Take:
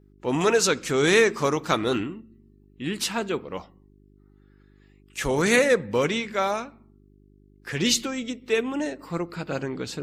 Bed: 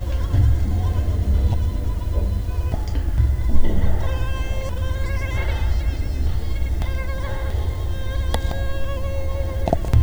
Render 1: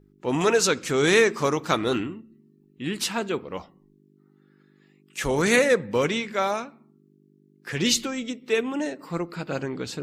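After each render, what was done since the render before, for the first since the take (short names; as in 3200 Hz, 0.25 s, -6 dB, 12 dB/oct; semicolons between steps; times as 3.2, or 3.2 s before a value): de-hum 50 Hz, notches 2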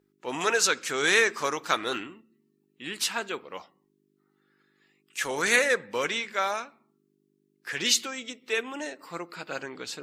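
HPF 980 Hz 6 dB/oct; dynamic EQ 1600 Hz, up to +4 dB, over -41 dBFS, Q 3.7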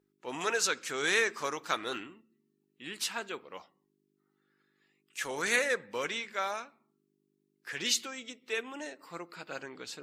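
gain -6 dB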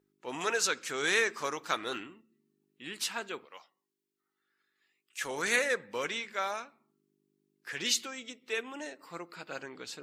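3.45–5.21 HPF 1300 Hz 6 dB/oct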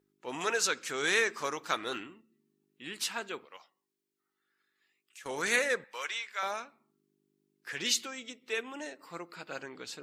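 3.56–5.26 compressor, threshold -48 dBFS; 5.84–6.43 HPF 900 Hz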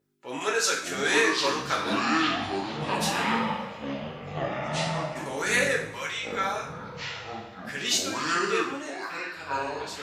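two-slope reverb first 0.53 s, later 1.6 s, DRR -2.5 dB; echoes that change speed 0.48 s, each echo -6 st, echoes 3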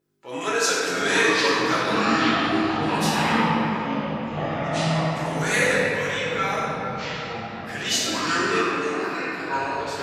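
shoebox room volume 200 m³, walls hard, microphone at 0.69 m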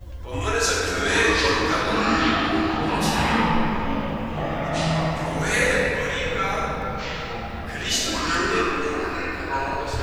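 add bed -14 dB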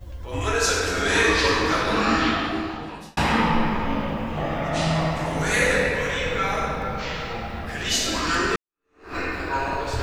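2.12–3.17 fade out; 8.56–9.16 fade in exponential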